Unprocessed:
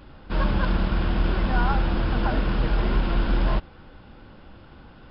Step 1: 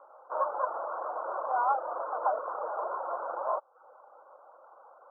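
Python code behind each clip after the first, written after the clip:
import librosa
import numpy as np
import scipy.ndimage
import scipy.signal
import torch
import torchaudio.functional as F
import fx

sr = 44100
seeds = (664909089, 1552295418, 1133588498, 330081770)

y = scipy.signal.sosfilt(scipy.signal.butter(12, 1300.0, 'lowpass', fs=sr, output='sos'), x)
y = fx.dereverb_blind(y, sr, rt60_s=0.53)
y = scipy.signal.sosfilt(scipy.signal.ellip(4, 1.0, 70, 550.0, 'highpass', fs=sr, output='sos'), y)
y = y * librosa.db_to_amplitude(3.5)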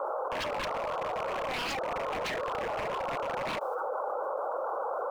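y = fx.peak_eq(x, sr, hz=430.0, db=10.0, octaves=0.67)
y = 10.0 ** (-29.0 / 20.0) * (np.abs((y / 10.0 ** (-29.0 / 20.0) + 3.0) % 4.0 - 2.0) - 1.0)
y = fx.env_flatten(y, sr, amount_pct=100)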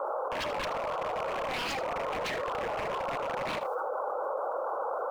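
y = x + 10.0 ** (-13.0 / 20.0) * np.pad(x, (int(79 * sr / 1000.0), 0))[:len(x)]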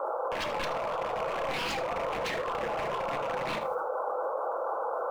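y = fx.room_shoebox(x, sr, seeds[0], volume_m3=250.0, walls='furnished', distance_m=0.75)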